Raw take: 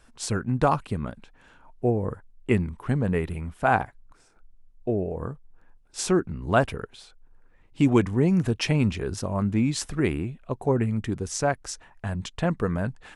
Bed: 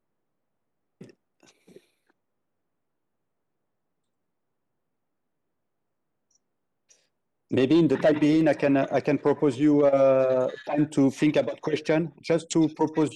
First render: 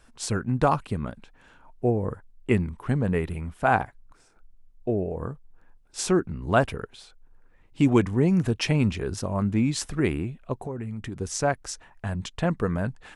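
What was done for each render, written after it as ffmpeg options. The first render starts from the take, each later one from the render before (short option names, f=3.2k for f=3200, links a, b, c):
-filter_complex "[0:a]asettb=1/sr,asplit=3[a][b][c];[a]atrim=end=10.604[d];[b]atrim=start=10.6:end=11.2,asetpts=PTS-STARTPTS,afade=t=in:d=0.004:c=qsin,afade=t=out:st=0.596:d=0.004:c=qsin,acompressor=threshold=-30dB:ratio=5:attack=3.2:release=140:knee=1:detection=peak[e];[c]atrim=start=11.196[f];[d][e]acrossfade=d=0.004:c1=hsin:c2=qsin[g];[g][f]acrossfade=d=0.004:c1=qsin:c2=hsin"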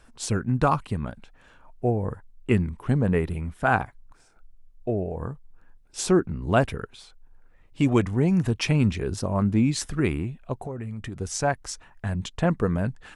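-af "aphaser=in_gain=1:out_gain=1:delay=1.8:decay=0.24:speed=0.32:type=triangular"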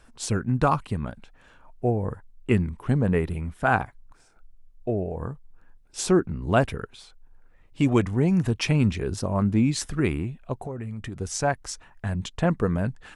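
-af anull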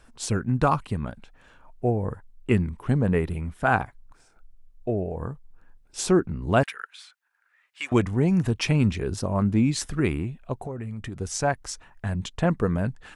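-filter_complex "[0:a]asettb=1/sr,asplit=3[a][b][c];[a]atrim=end=6.634[d];[b]atrim=start=6.63:end=7.92,asetpts=PTS-STARTPTS,afade=t=in:d=0.004:c=qsin,afade=t=out:st=1.286:d=0.004:c=qsin,highpass=f=1.6k:t=q:w=2[e];[c]atrim=start=7.916[f];[d][e]acrossfade=d=0.004:c1=hsin:c2=qsin[g];[g][f]acrossfade=d=0.004:c1=qsin:c2=hsin"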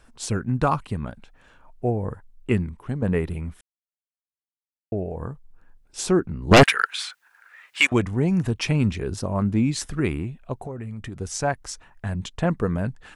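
-filter_complex "[0:a]asettb=1/sr,asplit=3[a][b][c];[a]atrim=end=6.514[d];[b]atrim=start=6.51:end=7.87,asetpts=PTS-STARTPTS,afade=t=in:d=0.004:c=qsin,afade=t=out:st=1.356:d=0.004:c=qsin,aeval=exprs='0.473*sin(PI/2*3.98*val(0)/0.473)':c=same[e];[c]atrim=start=7.866[f];[d][e]acrossfade=d=0.004:c1=hsin:c2=qsin[g];[g][f]acrossfade=d=0.004:c1=qsin:c2=hsin,asplit=4[h][i][j][k];[h]atrim=end=3.02,asetpts=PTS-STARTPTS,afade=t=out:st=2.5:d=0.52:silence=0.398107[l];[i]atrim=start=3.02:end=3.61,asetpts=PTS-STARTPTS,afade=t=in:d=0.004:c=hsin:silence=0.398107,afade=t=out:st=0.586:d=0.004:c=hsin[m];[j]atrim=start=3.61:end=4.92,asetpts=PTS-STARTPTS,volume=0[n];[k]atrim=start=4.92,asetpts=PTS-STARTPTS,afade=t=in:d=0.004:c=hsin[o];[l][m][n][o]concat=n=4:v=0:a=1"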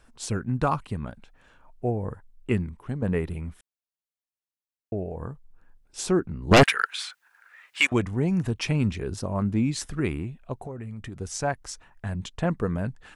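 -af "volume=-3dB"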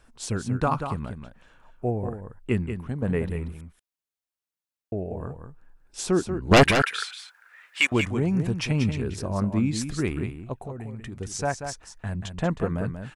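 -af "aecho=1:1:186:0.398"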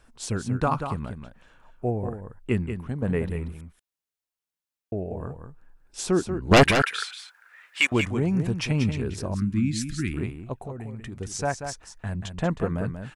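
-filter_complex "[0:a]asettb=1/sr,asplit=3[a][b][c];[a]atrim=end=9.344[d];[b]atrim=start=9.34:end=10.14,asetpts=PTS-STARTPTS,afade=t=in:d=0.004:c=qsin,afade=t=out:st=0.796:d=0.004:c=qsin,asuperstop=centerf=670:order=8:qfactor=0.6[e];[c]atrim=start=10.136[f];[d][e]acrossfade=d=0.004:c1=hsin:c2=qsin[g];[g][f]acrossfade=d=0.004:c1=qsin:c2=hsin"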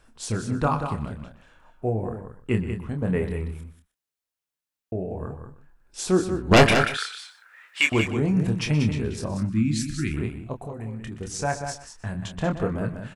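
-filter_complex "[0:a]asplit=2[a][b];[b]adelay=27,volume=-6.5dB[c];[a][c]amix=inputs=2:normalize=0,asplit=2[d][e];[e]adelay=122.4,volume=-14dB,highshelf=f=4k:g=-2.76[f];[d][f]amix=inputs=2:normalize=0"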